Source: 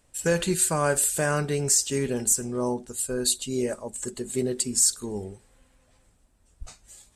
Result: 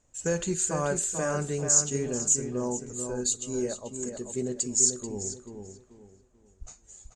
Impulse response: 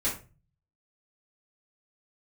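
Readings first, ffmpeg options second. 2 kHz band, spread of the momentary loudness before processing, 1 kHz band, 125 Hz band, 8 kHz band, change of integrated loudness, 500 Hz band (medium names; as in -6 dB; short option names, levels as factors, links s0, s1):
-7.0 dB, 12 LU, -5.0 dB, -3.5 dB, -1.0 dB, -2.5 dB, -3.5 dB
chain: -filter_complex "[0:a]lowpass=f=6800:t=q:w=13,highshelf=f=2200:g=-11.5,asplit=2[s0][s1];[s1]adelay=437,lowpass=f=3100:p=1,volume=0.501,asplit=2[s2][s3];[s3]adelay=437,lowpass=f=3100:p=1,volume=0.31,asplit=2[s4][s5];[s5]adelay=437,lowpass=f=3100:p=1,volume=0.31,asplit=2[s6][s7];[s7]adelay=437,lowpass=f=3100:p=1,volume=0.31[s8];[s0][s2][s4][s6][s8]amix=inputs=5:normalize=0,volume=0.631"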